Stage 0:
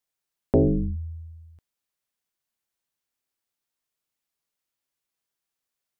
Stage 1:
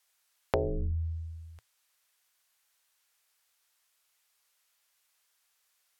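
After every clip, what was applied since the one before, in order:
treble cut that deepens with the level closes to 1,200 Hz, closed at −21.5 dBFS
drawn EQ curve 110 Hz 0 dB, 230 Hz −17 dB, 430 Hz +2 dB, 710 Hz +7 dB, 1,400 Hz +12 dB
downward compressor 4 to 1, threshold −28 dBFS, peak gain reduction 11.5 dB
level +1 dB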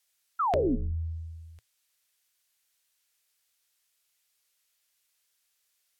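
parametric band 1,000 Hz −8 dB 1.7 octaves
sound drawn into the spectrogram fall, 0:00.39–0:00.76, 220–1,400 Hz −26 dBFS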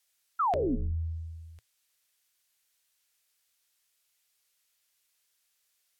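brickwall limiter −21.5 dBFS, peak gain reduction 6 dB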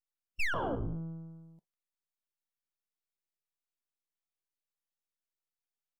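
far-end echo of a speakerphone 150 ms, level −12 dB
full-wave rectification
noise reduction from a noise print of the clip's start 21 dB

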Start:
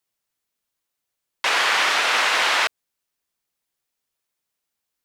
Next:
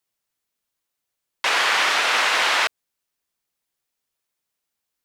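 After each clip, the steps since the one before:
no processing that can be heard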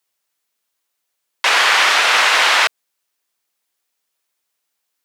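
high-pass filter 430 Hz 6 dB per octave
level +6.5 dB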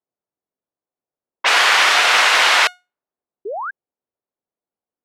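low-pass that shuts in the quiet parts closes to 550 Hz, open at −11.5 dBFS
tuned comb filter 720 Hz, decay 0.25 s, mix 50%
sound drawn into the spectrogram rise, 0:03.45–0:03.71, 370–1,700 Hz −31 dBFS
level +5.5 dB

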